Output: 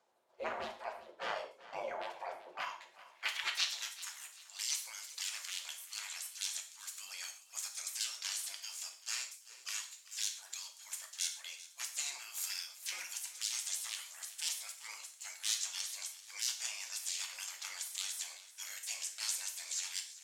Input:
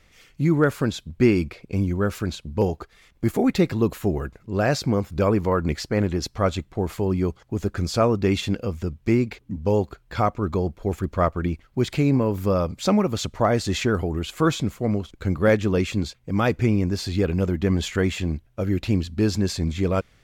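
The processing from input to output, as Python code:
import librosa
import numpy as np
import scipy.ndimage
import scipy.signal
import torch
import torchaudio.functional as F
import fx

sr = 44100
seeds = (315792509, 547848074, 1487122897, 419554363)

p1 = np.minimum(x, 2.0 * 10.0 ** (-15.0 / 20.0) - x)
p2 = fx.spec_gate(p1, sr, threshold_db=-30, keep='weak')
p3 = fx.rider(p2, sr, range_db=4, speed_s=0.5)
p4 = p2 + (p3 * 10.0 ** (-1.0 / 20.0))
p5 = fx.quant_dither(p4, sr, seeds[0], bits=12, dither='triangular')
p6 = fx.filter_sweep_bandpass(p5, sr, from_hz=580.0, to_hz=7700.0, start_s=2.38, end_s=3.87, q=1.6)
p7 = p6 + fx.echo_feedback(p6, sr, ms=388, feedback_pct=40, wet_db=-17, dry=0)
p8 = fx.rev_gated(p7, sr, seeds[1], gate_ms=170, shape='falling', drr_db=3.5)
y = p8 * 10.0 ** (7.0 / 20.0)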